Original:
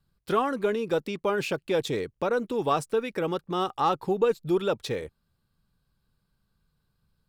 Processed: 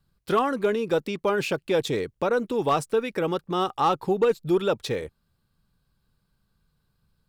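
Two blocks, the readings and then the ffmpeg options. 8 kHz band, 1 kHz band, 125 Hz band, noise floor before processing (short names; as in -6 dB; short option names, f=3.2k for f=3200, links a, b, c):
+2.5 dB, +2.5 dB, +2.5 dB, -76 dBFS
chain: -af "asoftclip=type=hard:threshold=-16.5dB,volume=2.5dB"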